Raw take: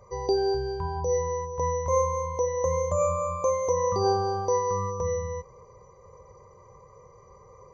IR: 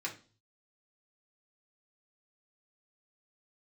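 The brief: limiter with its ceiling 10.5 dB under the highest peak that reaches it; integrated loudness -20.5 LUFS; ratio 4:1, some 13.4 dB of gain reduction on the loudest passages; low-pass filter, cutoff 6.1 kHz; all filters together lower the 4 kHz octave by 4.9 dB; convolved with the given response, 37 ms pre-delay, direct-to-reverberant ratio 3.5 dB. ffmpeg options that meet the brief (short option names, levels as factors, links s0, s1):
-filter_complex "[0:a]lowpass=6100,equalizer=f=4000:t=o:g=-4.5,acompressor=threshold=0.0141:ratio=4,alimiter=level_in=3.16:limit=0.0631:level=0:latency=1,volume=0.316,asplit=2[s0][s1];[1:a]atrim=start_sample=2205,adelay=37[s2];[s1][s2]afir=irnorm=-1:irlink=0,volume=0.501[s3];[s0][s3]amix=inputs=2:normalize=0,volume=13.3"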